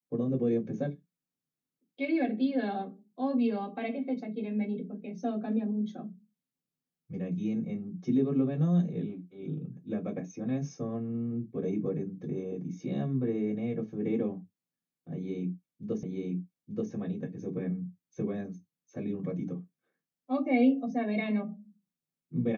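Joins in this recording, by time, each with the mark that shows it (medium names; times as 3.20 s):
16.03 s: repeat of the last 0.88 s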